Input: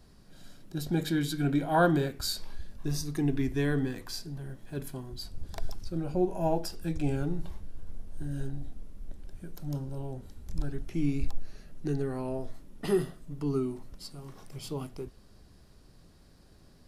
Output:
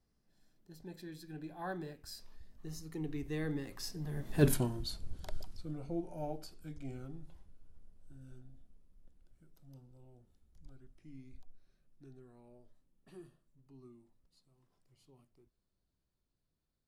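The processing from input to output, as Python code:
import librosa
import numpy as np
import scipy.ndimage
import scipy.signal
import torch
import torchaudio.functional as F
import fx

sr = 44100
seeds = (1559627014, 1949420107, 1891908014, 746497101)

y = fx.doppler_pass(x, sr, speed_mps=25, closest_m=2.8, pass_at_s=4.47)
y = F.gain(torch.from_numpy(y), 11.0).numpy()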